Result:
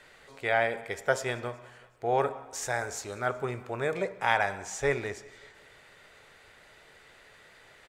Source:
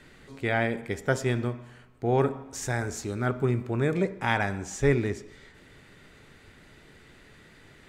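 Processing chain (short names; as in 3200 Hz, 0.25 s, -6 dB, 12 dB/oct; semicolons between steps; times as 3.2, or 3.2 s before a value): resonant low shelf 400 Hz -11 dB, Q 1.5; feedback echo 0.186 s, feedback 55%, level -23.5 dB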